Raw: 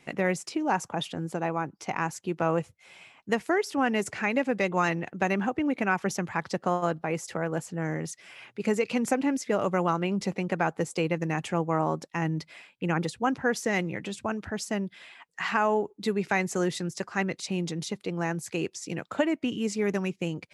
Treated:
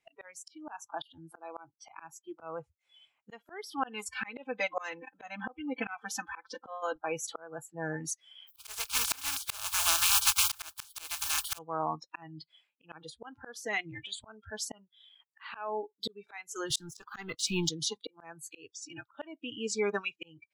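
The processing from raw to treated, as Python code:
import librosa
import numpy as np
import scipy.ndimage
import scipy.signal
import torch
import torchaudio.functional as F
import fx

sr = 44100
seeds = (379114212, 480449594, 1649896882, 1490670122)

y = fx.comb(x, sr, ms=3.9, depth=0.85, at=(3.84, 6.96))
y = fx.spec_flatten(y, sr, power=0.15, at=(8.47, 11.57), fade=0.02)
y = fx.leveller(y, sr, passes=2, at=(16.7, 17.69))
y = fx.noise_reduce_blind(y, sr, reduce_db=27)
y = fx.peak_eq(y, sr, hz=210.0, db=-11.5, octaves=1.9)
y = fx.auto_swell(y, sr, attack_ms=721.0)
y = y * 10.0 ** (6.0 / 20.0)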